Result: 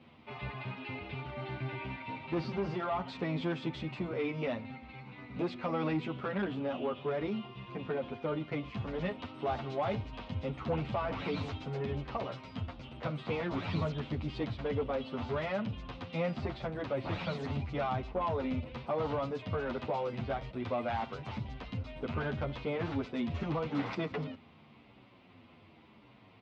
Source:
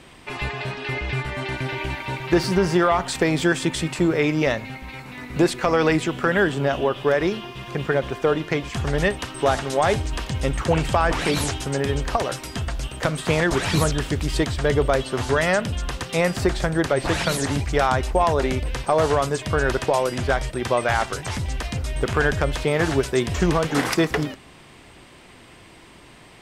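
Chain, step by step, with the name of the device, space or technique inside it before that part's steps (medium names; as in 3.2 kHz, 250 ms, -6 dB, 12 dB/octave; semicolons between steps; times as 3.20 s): barber-pole flanger into a guitar amplifier (endless flanger 9.4 ms -0.86 Hz; saturation -17 dBFS, distortion -16 dB; cabinet simulation 91–3600 Hz, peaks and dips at 97 Hz +7 dB, 230 Hz +7 dB, 370 Hz -4 dB, 1.7 kHz -10 dB, 3.1 kHz -3 dB); trim -8 dB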